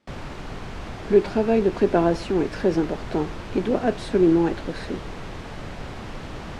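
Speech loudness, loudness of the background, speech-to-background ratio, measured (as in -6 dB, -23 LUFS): -22.5 LUFS, -36.5 LUFS, 14.0 dB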